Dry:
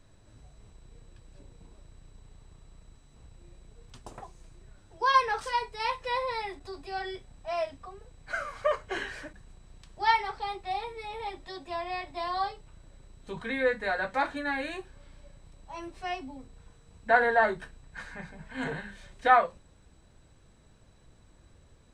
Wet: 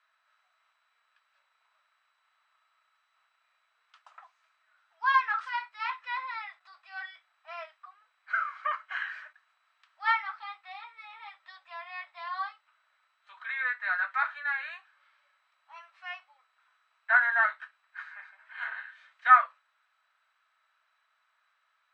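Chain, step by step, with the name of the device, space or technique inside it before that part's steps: inverse Chebyshev high-pass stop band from 260 Hz, stop band 70 dB; dynamic bell 1.4 kHz, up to +4 dB, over -41 dBFS, Q 1; tin-can telephone (band-pass 520–2400 Hz; small resonant body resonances 640/1300 Hz, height 8 dB, ringing for 25 ms)

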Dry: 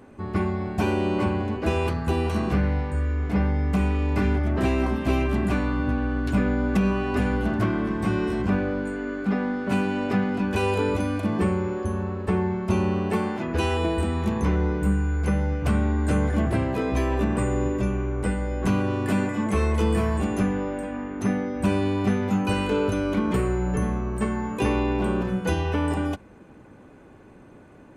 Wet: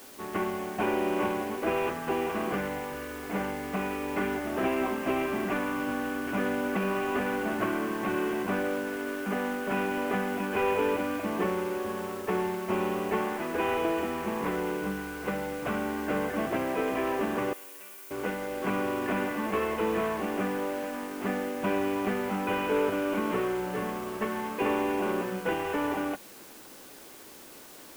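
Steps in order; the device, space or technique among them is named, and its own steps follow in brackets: army field radio (band-pass 340–2900 Hz; CVSD coder 16 kbps; white noise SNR 20 dB); 17.53–18.11 s: differentiator

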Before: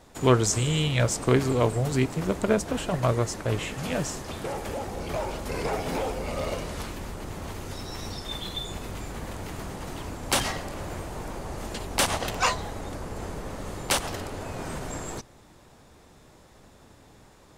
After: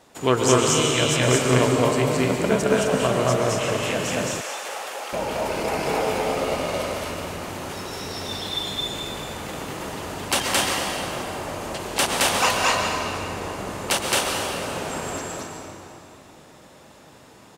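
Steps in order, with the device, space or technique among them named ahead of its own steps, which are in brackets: stadium PA (high-pass 250 Hz 6 dB/octave; peaking EQ 2.8 kHz +3.5 dB 0.21 oct; loudspeakers at several distances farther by 75 m 0 dB, 89 m -6 dB; reverberation RT60 3.1 s, pre-delay 109 ms, DRR 2 dB); 4.41–5.13 s: high-pass 800 Hz 12 dB/octave; trim +1.5 dB

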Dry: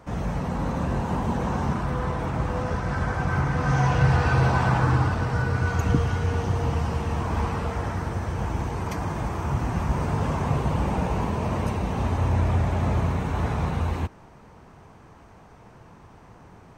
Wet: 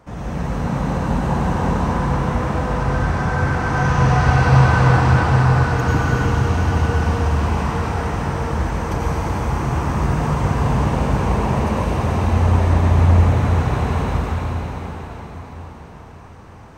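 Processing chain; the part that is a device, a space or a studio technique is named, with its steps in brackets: cathedral (reverberation RT60 5.4 s, pre-delay 84 ms, DRR -7.5 dB); trim -1 dB

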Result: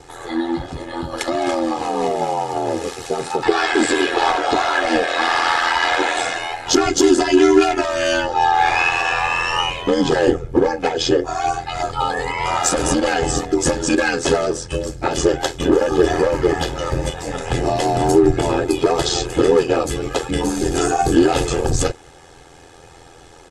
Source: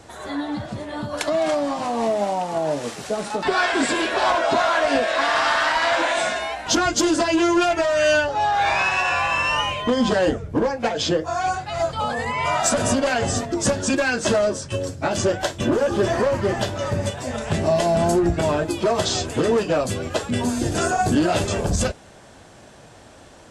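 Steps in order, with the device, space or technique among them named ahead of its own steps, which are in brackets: dynamic bell 290 Hz, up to +5 dB, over -34 dBFS, Q 2; ring-modulated robot voice (ring modulator 42 Hz; comb 2.4 ms, depth 64%); trim +4 dB

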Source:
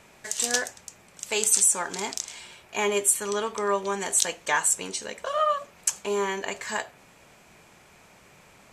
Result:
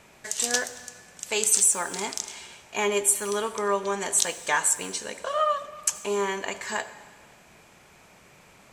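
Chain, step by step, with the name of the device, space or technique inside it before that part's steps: saturated reverb return (on a send at -13 dB: reverberation RT60 1.6 s, pre-delay 67 ms + saturation -22.5 dBFS, distortion -13 dB)

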